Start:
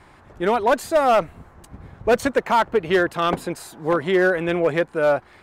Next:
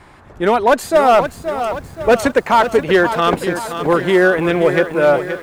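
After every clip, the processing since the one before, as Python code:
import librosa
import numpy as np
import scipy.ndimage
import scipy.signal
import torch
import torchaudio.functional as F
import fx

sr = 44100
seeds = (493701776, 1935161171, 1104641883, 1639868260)

y = fx.echo_crushed(x, sr, ms=525, feedback_pct=55, bits=8, wet_db=-9.5)
y = y * 10.0 ** (5.5 / 20.0)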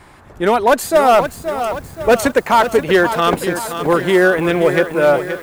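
y = fx.high_shelf(x, sr, hz=8700.0, db=10.0)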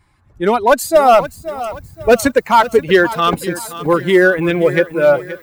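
y = fx.bin_expand(x, sr, power=1.5)
y = y * 10.0 ** (3.5 / 20.0)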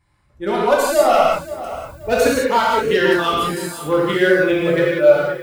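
y = fx.rev_gated(x, sr, seeds[0], gate_ms=220, shape='flat', drr_db=-5.0)
y = fx.dynamic_eq(y, sr, hz=3900.0, q=0.82, threshold_db=-26.0, ratio=4.0, max_db=4)
y = y * 10.0 ** (-10.0 / 20.0)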